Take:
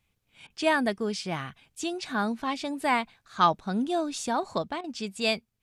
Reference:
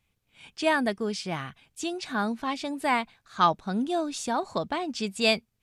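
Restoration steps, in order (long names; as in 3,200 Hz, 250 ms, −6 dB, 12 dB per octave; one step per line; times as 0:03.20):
repair the gap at 0:00.47/0:04.81, 29 ms
level correction +3.5 dB, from 0:04.62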